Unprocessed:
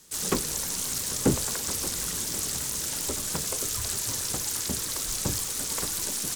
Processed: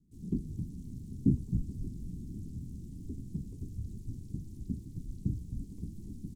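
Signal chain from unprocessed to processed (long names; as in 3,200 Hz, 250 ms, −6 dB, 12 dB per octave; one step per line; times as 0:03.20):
inverse Chebyshev low-pass filter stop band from 540 Hz, stop band 40 dB
on a send: echo with shifted repeats 264 ms, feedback 35%, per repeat −83 Hz, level −5 dB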